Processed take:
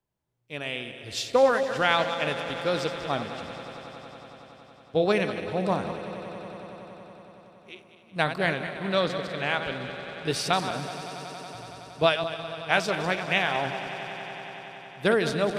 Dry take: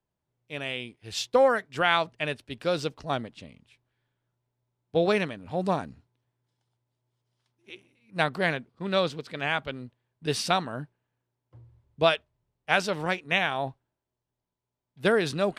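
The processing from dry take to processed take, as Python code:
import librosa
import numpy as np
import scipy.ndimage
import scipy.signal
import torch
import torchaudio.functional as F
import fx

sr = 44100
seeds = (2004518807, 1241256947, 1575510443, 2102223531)

y = fx.reverse_delay_fb(x, sr, ms=102, feedback_pct=61, wet_db=-9.5)
y = fx.echo_swell(y, sr, ms=93, loudest=5, wet_db=-18.0)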